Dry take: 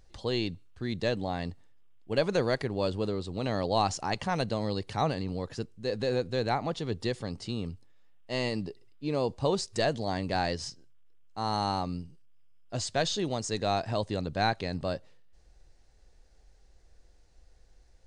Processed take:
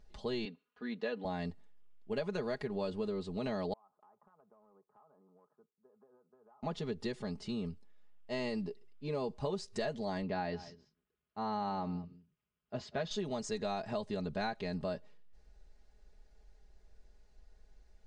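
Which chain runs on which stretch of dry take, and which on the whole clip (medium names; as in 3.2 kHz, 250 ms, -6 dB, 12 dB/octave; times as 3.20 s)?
0.45–1.25 s: band-pass 350–3200 Hz + comb 4.1 ms, depth 61%
3.73–6.63 s: Chebyshev band-pass 110–1300 Hz, order 5 + differentiator + compression 16:1, threshold -56 dBFS
10.22–13.11 s: high-pass 48 Hz + distance through air 190 m + delay 193 ms -19.5 dB
whole clip: treble shelf 4.5 kHz -8.5 dB; comb 4.8 ms, depth 75%; compression, threshold -28 dBFS; trim -4.5 dB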